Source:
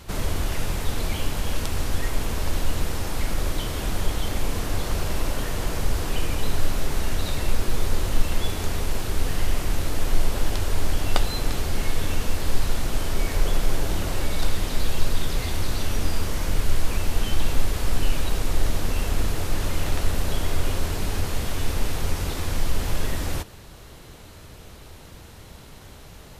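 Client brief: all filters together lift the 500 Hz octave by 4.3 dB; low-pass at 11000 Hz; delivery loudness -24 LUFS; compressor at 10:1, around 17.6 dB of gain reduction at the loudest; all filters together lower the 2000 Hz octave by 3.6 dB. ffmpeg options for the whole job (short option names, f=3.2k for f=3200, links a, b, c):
-af "lowpass=11k,equalizer=f=500:t=o:g=5.5,equalizer=f=2k:t=o:g=-5,acompressor=threshold=-29dB:ratio=10,volume=16dB"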